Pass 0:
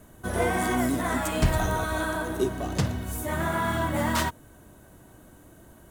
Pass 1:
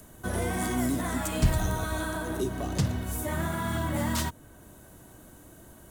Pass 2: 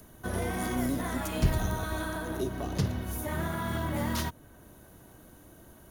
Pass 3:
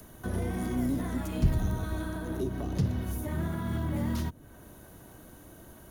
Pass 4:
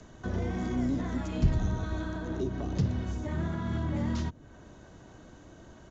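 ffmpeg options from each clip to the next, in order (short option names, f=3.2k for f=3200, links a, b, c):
-filter_complex "[0:a]acrossover=split=280|3600[a][b][c];[b]alimiter=level_in=2.5dB:limit=-24dB:level=0:latency=1:release=157,volume=-2.5dB[d];[c]acompressor=mode=upward:threshold=-51dB:ratio=2.5[e];[a][d][e]amix=inputs=3:normalize=0"
-af "equalizer=f=7.9k:w=5.9:g=-14.5,tremolo=f=280:d=0.462"
-filter_complex "[0:a]acrossover=split=400[a][b];[b]acompressor=threshold=-48dB:ratio=2.5[c];[a][c]amix=inputs=2:normalize=0,asplit=2[d][e];[e]volume=30dB,asoftclip=hard,volume=-30dB,volume=-9dB[f];[d][f]amix=inputs=2:normalize=0"
-af "aresample=16000,aresample=44100"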